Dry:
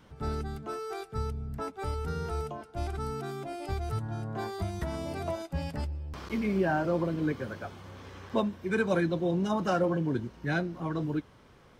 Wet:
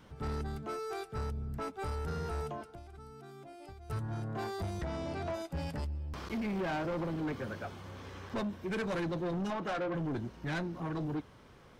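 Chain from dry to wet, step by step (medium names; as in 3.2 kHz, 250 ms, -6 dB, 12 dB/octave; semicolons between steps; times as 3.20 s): 2.67–3.90 s: compression 12:1, threshold -47 dBFS, peak gain reduction 19.5 dB; 4.81–5.34 s: low-pass 5.7 kHz 12 dB/octave; 9.50–9.95 s: tone controls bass -9 dB, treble -12 dB; saturation -31.5 dBFS, distortion -8 dB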